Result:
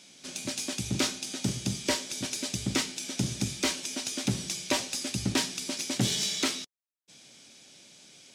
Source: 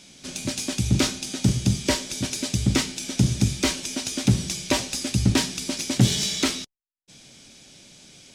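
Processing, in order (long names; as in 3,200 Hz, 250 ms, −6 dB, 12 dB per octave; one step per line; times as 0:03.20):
high-pass filter 290 Hz 6 dB per octave
level −4 dB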